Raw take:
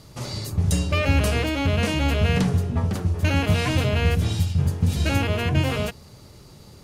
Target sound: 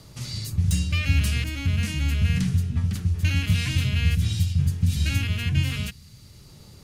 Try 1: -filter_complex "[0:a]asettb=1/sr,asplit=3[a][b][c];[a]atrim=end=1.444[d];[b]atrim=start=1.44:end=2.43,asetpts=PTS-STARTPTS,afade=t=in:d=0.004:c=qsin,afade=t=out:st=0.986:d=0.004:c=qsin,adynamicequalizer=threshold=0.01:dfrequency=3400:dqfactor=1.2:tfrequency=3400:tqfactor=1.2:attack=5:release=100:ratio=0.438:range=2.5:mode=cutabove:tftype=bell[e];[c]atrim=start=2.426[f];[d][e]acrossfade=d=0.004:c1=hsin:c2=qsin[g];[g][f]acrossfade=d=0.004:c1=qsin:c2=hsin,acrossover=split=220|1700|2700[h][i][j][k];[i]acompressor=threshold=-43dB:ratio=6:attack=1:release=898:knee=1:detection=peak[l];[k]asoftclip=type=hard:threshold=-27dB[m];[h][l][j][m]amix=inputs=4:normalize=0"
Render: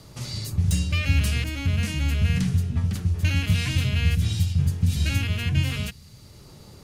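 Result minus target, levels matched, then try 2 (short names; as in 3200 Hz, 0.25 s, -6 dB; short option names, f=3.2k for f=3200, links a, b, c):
compressor: peak gain reduction -7 dB
-filter_complex "[0:a]asettb=1/sr,asplit=3[a][b][c];[a]atrim=end=1.444[d];[b]atrim=start=1.44:end=2.43,asetpts=PTS-STARTPTS,afade=t=in:d=0.004:c=qsin,afade=t=out:st=0.986:d=0.004:c=qsin,adynamicequalizer=threshold=0.01:dfrequency=3400:dqfactor=1.2:tfrequency=3400:tqfactor=1.2:attack=5:release=100:ratio=0.438:range=2.5:mode=cutabove:tftype=bell[e];[c]atrim=start=2.426[f];[d][e]acrossfade=d=0.004:c1=hsin:c2=qsin[g];[g][f]acrossfade=d=0.004:c1=qsin:c2=hsin,acrossover=split=220|1700|2700[h][i][j][k];[i]acompressor=threshold=-51.5dB:ratio=6:attack=1:release=898:knee=1:detection=peak[l];[k]asoftclip=type=hard:threshold=-27dB[m];[h][l][j][m]amix=inputs=4:normalize=0"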